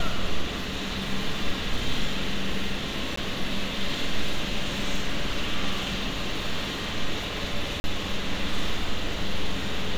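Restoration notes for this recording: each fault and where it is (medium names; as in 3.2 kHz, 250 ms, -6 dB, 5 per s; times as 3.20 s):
3.16–3.17 s: dropout 14 ms
7.80–7.84 s: dropout 41 ms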